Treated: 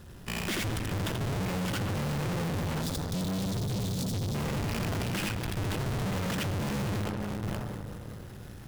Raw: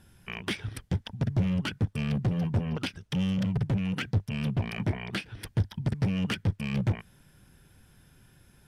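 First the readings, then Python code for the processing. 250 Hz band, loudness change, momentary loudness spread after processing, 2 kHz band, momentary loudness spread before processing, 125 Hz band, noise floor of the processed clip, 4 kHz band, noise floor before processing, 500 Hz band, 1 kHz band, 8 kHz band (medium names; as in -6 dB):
-2.0 dB, -1.5 dB, 5 LU, +1.0 dB, 6 LU, -2.5 dB, -45 dBFS, +1.5 dB, -60 dBFS, +4.0 dB, +6.0 dB, +10.0 dB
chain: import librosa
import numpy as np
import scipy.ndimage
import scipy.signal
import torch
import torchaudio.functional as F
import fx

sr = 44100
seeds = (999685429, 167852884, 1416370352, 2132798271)

p1 = fx.halfwave_hold(x, sr)
p2 = p1 + fx.echo_multitap(p1, sr, ms=(83, 558), db=(-3.0, -14.5), dry=0)
p3 = fx.spec_erase(p2, sr, start_s=2.82, length_s=1.53, low_hz=260.0, high_hz=3400.0)
p4 = fx.notch(p3, sr, hz=2300.0, q=14.0)
p5 = fx.rev_freeverb(p4, sr, rt60_s=3.3, hf_ratio=0.45, predelay_ms=15, drr_db=10.5)
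p6 = fx.tube_stage(p5, sr, drive_db=37.0, bias=0.7)
p7 = fx.sustainer(p6, sr, db_per_s=22.0)
y = p7 * 10.0 ** (7.0 / 20.0)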